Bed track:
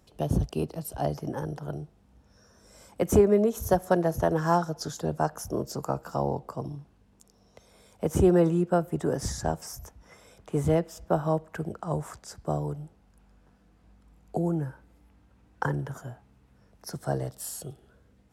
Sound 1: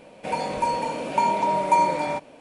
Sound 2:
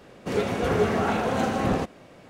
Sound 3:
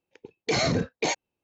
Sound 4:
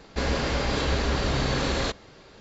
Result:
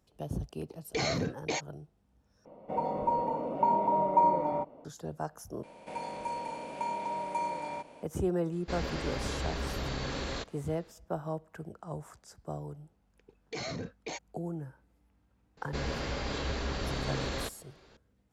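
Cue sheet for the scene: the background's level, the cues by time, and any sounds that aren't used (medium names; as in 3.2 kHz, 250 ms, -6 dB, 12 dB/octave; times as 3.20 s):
bed track -10 dB
0.46 s: add 3 -7 dB
2.45 s: replace with 1 -4 dB + Savitzky-Golay filter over 65 samples
5.63 s: replace with 1 -16 dB + spectral levelling over time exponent 0.6
8.52 s: add 4 -10 dB
13.04 s: add 3 -13.5 dB
15.57 s: add 4 -9 dB
not used: 2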